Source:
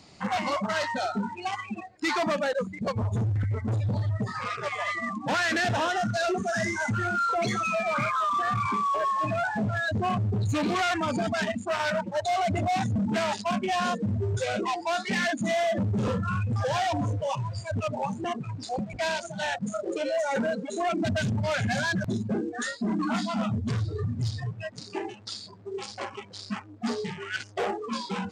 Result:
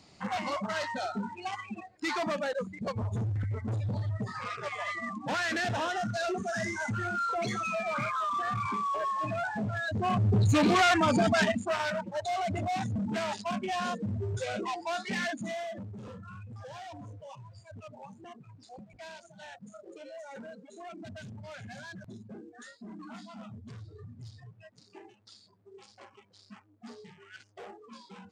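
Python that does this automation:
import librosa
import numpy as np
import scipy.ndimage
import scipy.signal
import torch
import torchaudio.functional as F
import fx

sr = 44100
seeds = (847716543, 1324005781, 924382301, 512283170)

y = fx.gain(x, sr, db=fx.line((9.91, -5.0), (10.34, 3.0), (11.41, 3.0), (11.95, -5.5), (15.24, -5.5), (16.0, -17.5)))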